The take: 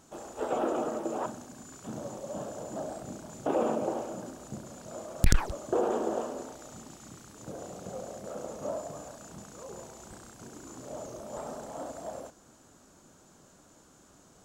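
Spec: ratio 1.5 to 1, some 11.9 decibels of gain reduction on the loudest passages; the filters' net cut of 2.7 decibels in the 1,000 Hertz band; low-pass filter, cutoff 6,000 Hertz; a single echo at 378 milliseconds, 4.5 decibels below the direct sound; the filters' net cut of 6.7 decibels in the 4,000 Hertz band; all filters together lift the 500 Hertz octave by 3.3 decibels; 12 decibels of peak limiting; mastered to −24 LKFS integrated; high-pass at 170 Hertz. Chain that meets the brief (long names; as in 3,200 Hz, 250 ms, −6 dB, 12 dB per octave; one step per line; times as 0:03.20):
high-pass filter 170 Hz
low-pass filter 6,000 Hz
parametric band 500 Hz +6 dB
parametric band 1,000 Hz −7 dB
parametric band 4,000 Hz −7.5 dB
downward compressor 1.5 to 1, threshold −55 dBFS
brickwall limiter −33.5 dBFS
single-tap delay 378 ms −4.5 dB
level +21 dB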